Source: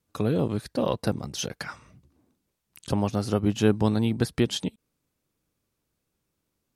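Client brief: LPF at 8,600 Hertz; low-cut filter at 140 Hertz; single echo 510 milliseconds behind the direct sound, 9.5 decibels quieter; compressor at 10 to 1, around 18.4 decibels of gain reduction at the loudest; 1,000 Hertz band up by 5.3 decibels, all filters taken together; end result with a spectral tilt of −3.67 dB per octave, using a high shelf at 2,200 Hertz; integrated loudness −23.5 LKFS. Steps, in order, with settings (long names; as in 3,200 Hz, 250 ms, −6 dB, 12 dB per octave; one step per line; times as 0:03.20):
high-pass filter 140 Hz
low-pass filter 8,600 Hz
parametric band 1,000 Hz +5 dB
high-shelf EQ 2,200 Hz +8 dB
downward compressor 10 to 1, threshold −35 dBFS
single-tap delay 510 ms −9.5 dB
level +17 dB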